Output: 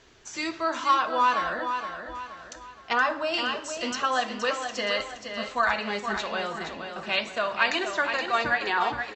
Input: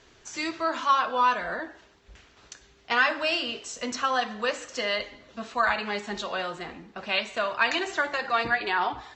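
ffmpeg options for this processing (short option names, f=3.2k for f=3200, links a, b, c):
-filter_complex "[0:a]asettb=1/sr,asplit=3[a][b][c];[a]atrim=end=2.934[d];[b]atrim=start=2.93:end=3.34,asetpts=PTS-STARTPTS,afade=t=in:d=0.004:c=qsin,afade=t=out:st=0.406:d=0.004:c=qsin,highshelf=f=1.6k:t=q:w=1.5:g=-6.5[e];[c]atrim=start=3.336[f];[d][e]acrossfade=d=0.004:c1=hsin:c2=qsin[g];[g][f]acrossfade=d=0.004:c1=qsin:c2=hsin,aecho=1:1:471|942|1413|1884|2355:0.422|0.169|0.0675|0.027|0.0108"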